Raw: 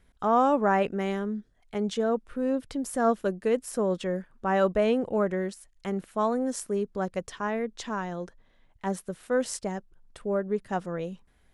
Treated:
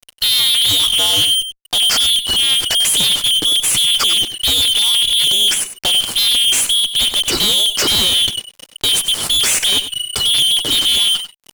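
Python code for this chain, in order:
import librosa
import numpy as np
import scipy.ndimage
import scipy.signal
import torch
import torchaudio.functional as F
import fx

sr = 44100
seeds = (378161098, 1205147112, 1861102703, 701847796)

p1 = fx.band_shuffle(x, sr, order='2413')
p2 = fx.high_shelf(p1, sr, hz=9200.0, db=3.5)
p3 = fx.fuzz(p2, sr, gain_db=51.0, gate_db=-54.0)
y = p3 + fx.echo_single(p3, sr, ms=96, db=-11.5, dry=0)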